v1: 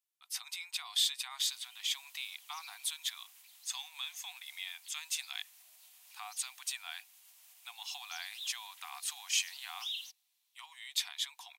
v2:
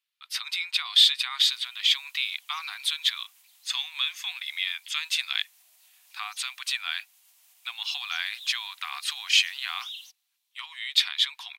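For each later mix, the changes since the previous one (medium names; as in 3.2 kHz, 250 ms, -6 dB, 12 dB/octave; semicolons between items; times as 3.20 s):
speech: add high-order bell 2.3 kHz +13.5 dB 2.4 oct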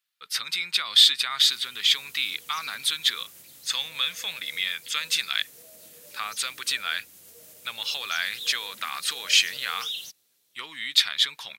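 background +5.0 dB; master: remove rippled Chebyshev high-pass 710 Hz, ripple 6 dB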